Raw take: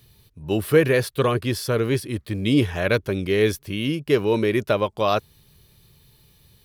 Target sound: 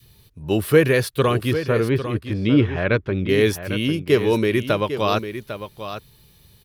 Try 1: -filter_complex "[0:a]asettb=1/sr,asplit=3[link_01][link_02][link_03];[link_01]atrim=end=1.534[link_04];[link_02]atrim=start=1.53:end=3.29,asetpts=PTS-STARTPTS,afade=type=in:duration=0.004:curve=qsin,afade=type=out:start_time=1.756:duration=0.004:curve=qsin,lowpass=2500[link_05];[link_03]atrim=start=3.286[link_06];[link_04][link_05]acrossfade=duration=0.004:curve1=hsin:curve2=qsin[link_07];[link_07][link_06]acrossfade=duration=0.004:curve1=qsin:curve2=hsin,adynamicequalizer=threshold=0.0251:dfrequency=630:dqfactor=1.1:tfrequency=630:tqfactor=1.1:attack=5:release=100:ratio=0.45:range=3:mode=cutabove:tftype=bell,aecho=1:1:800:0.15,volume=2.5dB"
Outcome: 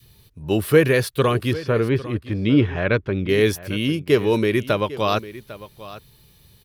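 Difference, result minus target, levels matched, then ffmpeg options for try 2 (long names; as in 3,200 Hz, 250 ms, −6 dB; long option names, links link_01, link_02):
echo-to-direct −6 dB
-filter_complex "[0:a]asettb=1/sr,asplit=3[link_01][link_02][link_03];[link_01]atrim=end=1.534[link_04];[link_02]atrim=start=1.53:end=3.29,asetpts=PTS-STARTPTS,afade=type=in:duration=0.004:curve=qsin,afade=type=out:start_time=1.756:duration=0.004:curve=qsin,lowpass=2500[link_05];[link_03]atrim=start=3.286[link_06];[link_04][link_05]acrossfade=duration=0.004:curve1=hsin:curve2=qsin[link_07];[link_07][link_06]acrossfade=duration=0.004:curve1=qsin:curve2=hsin,adynamicequalizer=threshold=0.0251:dfrequency=630:dqfactor=1.1:tfrequency=630:tqfactor=1.1:attack=5:release=100:ratio=0.45:range=3:mode=cutabove:tftype=bell,aecho=1:1:800:0.299,volume=2.5dB"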